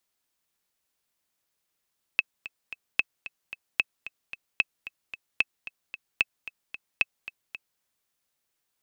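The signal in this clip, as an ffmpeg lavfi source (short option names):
-f lavfi -i "aevalsrc='pow(10,(-7.5-16*gte(mod(t,3*60/224),60/224))/20)*sin(2*PI*2600*mod(t,60/224))*exp(-6.91*mod(t,60/224)/0.03)':d=5.62:s=44100"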